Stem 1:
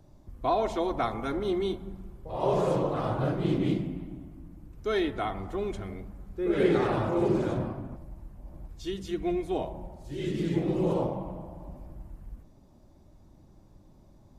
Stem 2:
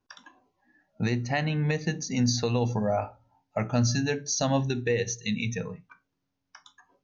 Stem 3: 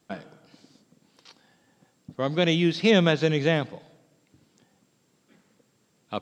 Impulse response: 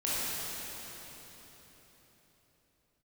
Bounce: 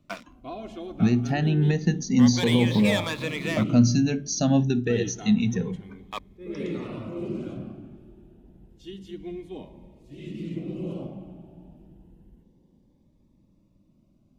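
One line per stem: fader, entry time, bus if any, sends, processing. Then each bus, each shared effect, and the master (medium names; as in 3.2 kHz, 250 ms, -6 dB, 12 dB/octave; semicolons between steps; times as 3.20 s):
-12.0 dB, 0.00 s, send -24 dB, peaking EQ 2.8 kHz +10 dB 0.71 oct; attacks held to a fixed rise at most 340 dB/s
-0.5 dB, 0.00 s, no send, none
-11.5 dB, 0.00 s, no send, high-pass 440 Hz 12 dB/octave; high-order bell 1.7 kHz +13 dB 2.5 oct; waveshaping leveller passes 3; auto duck -9 dB, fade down 0.35 s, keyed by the second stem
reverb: on, RT60 4.2 s, pre-delay 18 ms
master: peaking EQ 220 Hz +10.5 dB 1.3 oct; Shepard-style phaser rising 0.29 Hz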